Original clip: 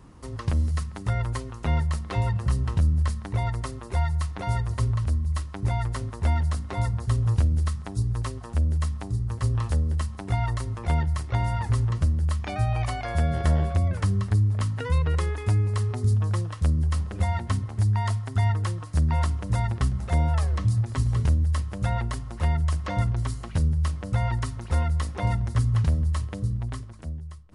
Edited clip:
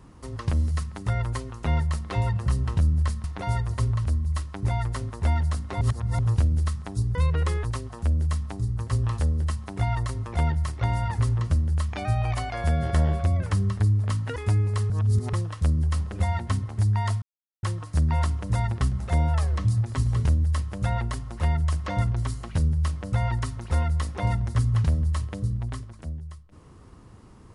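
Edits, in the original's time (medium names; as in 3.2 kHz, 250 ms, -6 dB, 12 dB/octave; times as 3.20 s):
3.24–4.24 s: delete
6.81–7.19 s: reverse
14.87–15.36 s: move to 8.15 s
15.90–16.33 s: reverse
18.22–18.63 s: mute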